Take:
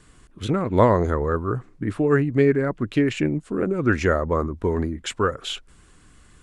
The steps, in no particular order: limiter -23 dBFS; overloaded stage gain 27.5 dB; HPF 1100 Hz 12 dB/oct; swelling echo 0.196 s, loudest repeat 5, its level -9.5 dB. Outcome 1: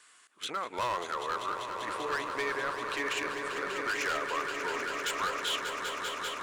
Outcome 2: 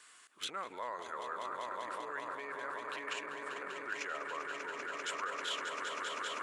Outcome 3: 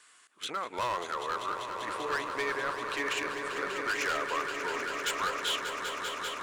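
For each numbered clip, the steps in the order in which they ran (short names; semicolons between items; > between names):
HPF > overloaded stage > swelling echo > limiter; swelling echo > limiter > HPF > overloaded stage; HPF > overloaded stage > limiter > swelling echo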